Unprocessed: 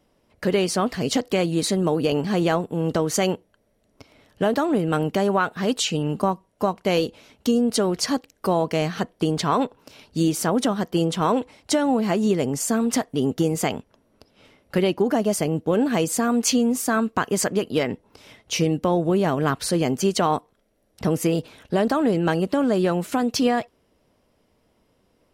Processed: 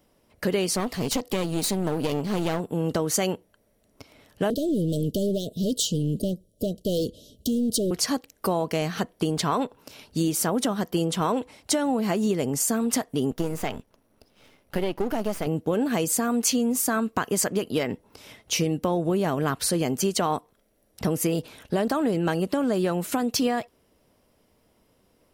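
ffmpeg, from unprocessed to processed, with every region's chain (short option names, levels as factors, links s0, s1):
-filter_complex "[0:a]asettb=1/sr,asplit=3[s0][s1][s2];[s0]atrim=end=0.754[s3];[s1]atrim=start=0.75:end=2.6,asetpts=PTS-STARTPTS,afade=t=in:d=0.004:c=qsin,afade=t=out:st=1.846:d=0.004:c=qsin,equalizer=f=1600:w=3.6:g=-6.5,aeval=exprs='clip(val(0),-1,0.0422)':c=same[s4];[s2]atrim=start=2.596[s5];[s3][s4]acrossfade=d=0.004:c1=hsin:c2=qsin[s6];[s6][s5]acrossfade=d=0.004:c1=qsin:c2=hsin,asettb=1/sr,asplit=3[s7][s8][s9];[s7]atrim=end=4.504[s10];[s8]atrim=start=4.5:end=7.91,asetpts=PTS-STARTPTS,afade=t=in:d=0.004:c=qsin,afade=t=out:st=3.406:d=0.004:c=qsin,lowshelf=f=150:g=9,volume=8.41,asoftclip=hard,volume=0.119,asuperstop=centerf=1400:order=20:qfactor=0.58[s11];[s9]atrim=start=7.906[s12];[s10][s11]acrossfade=d=0.004:c1=hsin:c2=qsin[s13];[s13][s12]acrossfade=d=0.004:c1=qsin:c2=hsin,asettb=1/sr,asplit=3[s14][s15][s16];[s14]atrim=end=13.314[s17];[s15]atrim=start=13.31:end=15.47,asetpts=PTS-STARTPTS,afade=t=in:d=0.004:c=qsin,afade=t=out:st=2.156:d=0.004:c=qsin,aeval=exprs='if(lt(val(0),0),0.251*val(0),val(0))':c=same,acrossover=split=3200[s18][s19];[s19]acompressor=threshold=0.00891:ratio=4:attack=1:release=60[s20];[s18][s20]amix=inputs=2:normalize=0,equalizer=f=7500:t=o:w=0.25:g=-2.5[s21];[s16]atrim=start=15.466[s22];[s17][s21]acrossfade=d=0.004:c1=hsin:c2=qsin[s23];[s23][s22]acrossfade=d=0.004:c1=qsin:c2=hsin,highshelf=f=10000:g=11.5,acompressor=threshold=0.0708:ratio=2"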